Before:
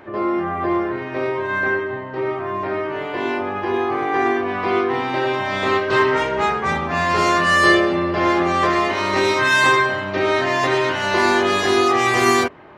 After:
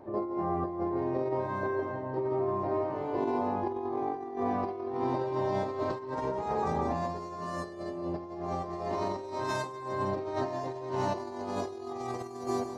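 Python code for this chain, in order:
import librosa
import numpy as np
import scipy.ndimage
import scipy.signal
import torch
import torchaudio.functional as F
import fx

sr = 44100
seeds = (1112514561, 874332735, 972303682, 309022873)

y = fx.band_shelf(x, sr, hz=2100.0, db=-14.5, octaves=1.7)
y = fx.echo_feedback(y, sr, ms=162, feedback_pct=32, wet_db=-6.0)
y = fx.over_compress(y, sr, threshold_db=-23.0, ratio=-0.5)
y = fx.high_shelf(y, sr, hz=2900.0, db=-9.5)
y = y * librosa.db_to_amplitude(-8.5)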